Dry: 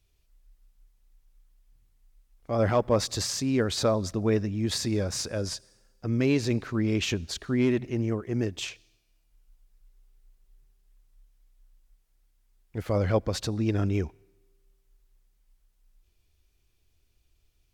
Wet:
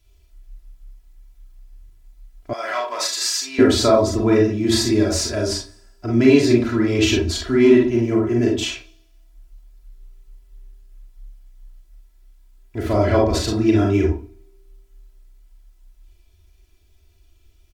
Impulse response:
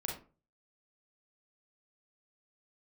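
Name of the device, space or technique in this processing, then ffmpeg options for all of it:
microphone above a desk: -filter_complex "[0:a]aecho=1:1:3:0.88[s0];[1:a]atrim=start_sample=2205[s1];[s0][s1]afir=irnorm=-1:irlink=0,asettb=1/sr,asplit=3[s2][s3][s4];[s2]atrim=end=2.534[s5];[s3]atrim=start=2.53:end=3.59,asetpts=PTS-STARTPTS,afade=t=in:d=0.004:c=qsin,afade=t=out:st=1.056:d=0.004:c=qsin,highpass=1300[s6];[s4]atrim=start=3.586[s7];[s5][s6]acrossfade=d=0.004:c1=hsin:c2=qsin[s8];[s8][s7]acrossfade=d=0.004:c1=qsin:c2=hsin,volume=2.11"

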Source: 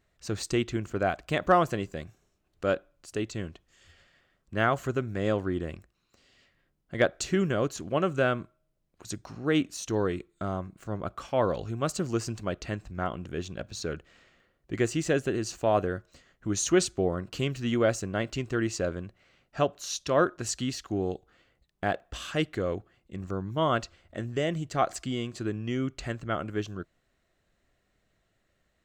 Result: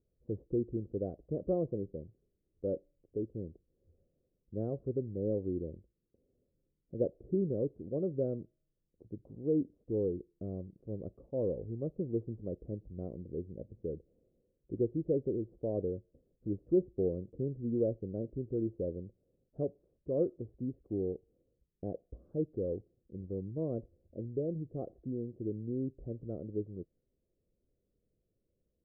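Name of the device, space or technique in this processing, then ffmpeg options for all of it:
under water: -af "lowpass=f=420:w=0.5412,lowpass=f=420:w=1.3066,equalizer=f=500:t=o:w=0.56:g=10.5,volume=0.473"

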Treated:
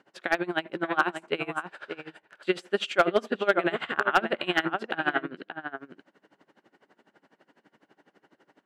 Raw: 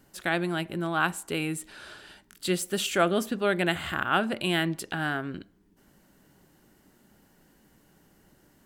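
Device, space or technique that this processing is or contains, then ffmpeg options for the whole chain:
helicopter radio: -filter_complex "[0:a]asettb=1/sr,asplit=3[s0][s1][s2];[s0]atrim=end=1.404[s3];[s1]atrim=start=1.4:end=2.47,asetpts=PTS-STARTPTS,afade=t=in:d=0.004:c=qsin,afade=t=out:st=1.066:d=0.004:c=qsin,equalizer=f=125:t=o:w=1:g=7,equalizer=f=250:t=o:w=1:g=-12,equalizer=f=500:t=o:w=1:g=3,equalizer=f=4000:t=o:w=1:g=-5[s4];[s2]atrim=start=2.466[s5];[s3][s4]acrossfade=d=0.004:c1=hsin:c2=qsin[s6];[s6][s5]acrossfade=d=0.004:c1=qsin:c2=hsin,highpass=360,lowpass=2800,asplit=2[s7][s8];[s8]adelay=577.3,volume=0.398,highshelf=f=4000:g=-13[s9];[s7][s9]amix=inputs=2:normalize=0,aeval=exprs='val(0)*pow(10,-22*(0.5-0.5*cos(2*PI*12*n/s))/20)':c=same,asoftclip=type=hard:threshold=0.112,volume=2.66"

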